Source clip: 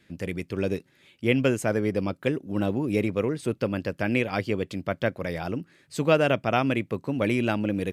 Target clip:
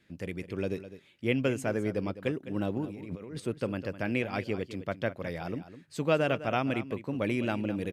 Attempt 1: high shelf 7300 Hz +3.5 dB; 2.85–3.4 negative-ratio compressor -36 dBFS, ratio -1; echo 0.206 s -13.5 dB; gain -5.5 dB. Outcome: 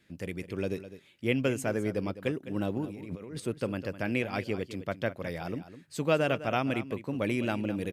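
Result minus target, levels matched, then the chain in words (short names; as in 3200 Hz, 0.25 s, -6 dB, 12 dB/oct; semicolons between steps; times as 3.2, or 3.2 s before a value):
8000 Hz band +3.5 dB
high shelf 7300 Hz -3.5 dB; 2.85–3.4 negative-ratio compressor -36 dBFS, ratio -1; echo 0.206 s -13.5 dB; gain -5.5 dB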